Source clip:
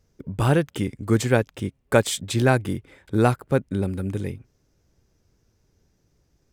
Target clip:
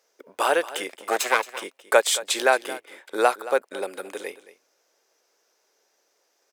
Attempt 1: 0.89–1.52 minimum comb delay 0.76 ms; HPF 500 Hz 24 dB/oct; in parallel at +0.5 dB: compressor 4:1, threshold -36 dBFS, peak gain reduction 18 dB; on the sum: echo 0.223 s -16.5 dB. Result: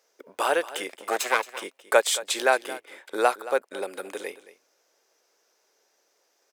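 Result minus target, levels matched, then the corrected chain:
compressor: peak gain reduction +8 dB
0.89–1.52 minimum comb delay 0.76 ms; HPF 500 Hz 24 dB/oct; in parallel at +0.5 dB: compressor 4:1, threshold -25.5 dBFS, peak gain reduction 10.5 dB; on the sum: echo 0.223 s -16.5 dB

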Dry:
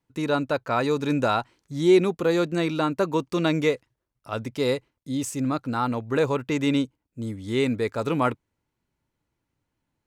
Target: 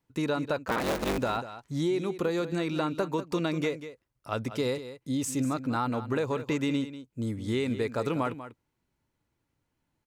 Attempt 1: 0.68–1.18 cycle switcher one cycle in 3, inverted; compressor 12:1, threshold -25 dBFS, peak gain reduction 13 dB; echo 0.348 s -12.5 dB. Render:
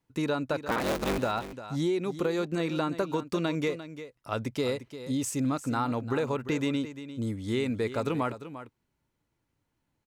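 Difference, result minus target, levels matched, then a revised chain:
echo 0.155 s late
0.68–1.18 cycle switcher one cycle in 3, inverted; compressor 12:1, threshold -25 dBFS, peak gain reduction 13 dB; echo 0.193 s -12.5 dB

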